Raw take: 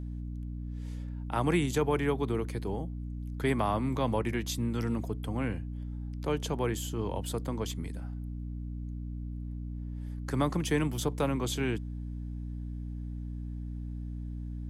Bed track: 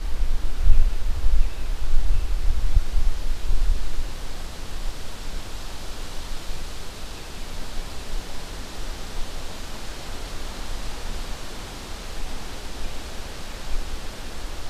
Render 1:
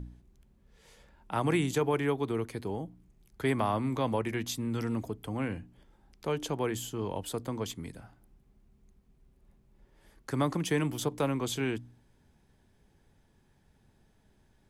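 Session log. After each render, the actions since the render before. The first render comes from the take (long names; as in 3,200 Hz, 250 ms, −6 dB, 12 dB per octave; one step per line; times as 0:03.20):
hum removal 60 Hz, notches 5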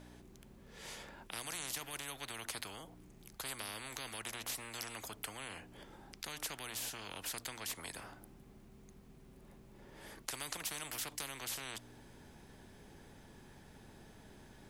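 every bin compressed towards the loudest bin 10 to 1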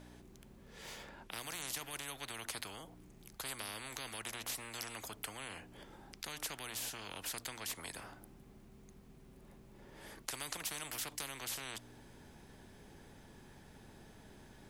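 0:00.81–0:01.62: linearly interpolated sample-rate reduction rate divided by 2×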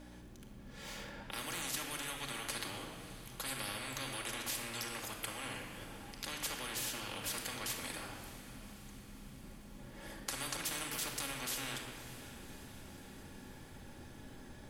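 feedback delay with all-pass diffusion 581 ms, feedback 64%, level −15 dB
rectangular room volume 2,800 cubic metres, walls mixed, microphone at 2.3 metres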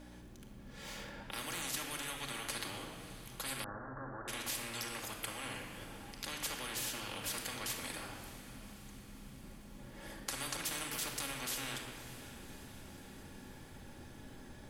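0:03.64–0:04.28: Butterworth low-pass 1,700 Hz 96 dB per octave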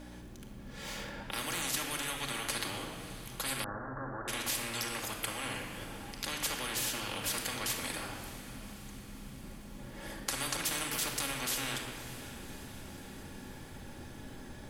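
level +5 dB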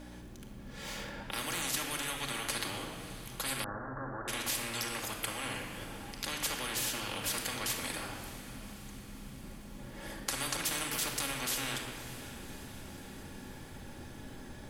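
no processing that can be heard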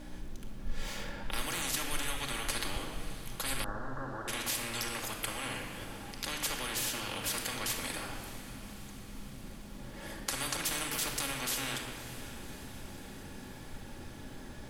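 mix in bed track −22.5 dB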